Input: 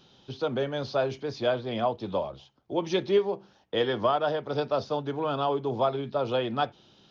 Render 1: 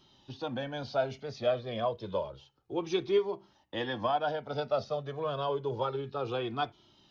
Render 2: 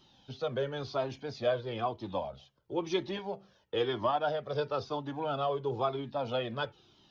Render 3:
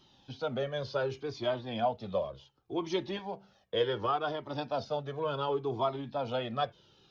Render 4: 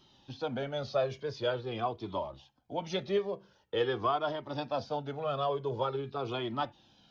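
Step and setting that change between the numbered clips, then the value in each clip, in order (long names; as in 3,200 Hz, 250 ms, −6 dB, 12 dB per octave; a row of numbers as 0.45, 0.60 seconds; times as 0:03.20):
flanger whose copies keep moving one way, speed: 0.29, 1, 0.68, 0.46 Hertz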